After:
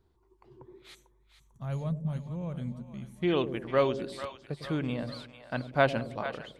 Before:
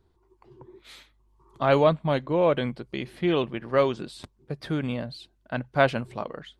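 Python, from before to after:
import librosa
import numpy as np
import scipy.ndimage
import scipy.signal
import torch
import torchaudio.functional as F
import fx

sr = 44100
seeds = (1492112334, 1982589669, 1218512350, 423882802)

y = fx.spec_box(x, sr, start_s=0.95, length_s=2.27, low_hz=250.0, high_hz=5600.0, gain_db=-19)
y = fx.echo_split(y, sr, split_hz=600.0, low_ms=102, high_ms=447, feedback_pct=52, wet_db=-10.5)
y = y * librosa.db_to_amplitude(-3.5)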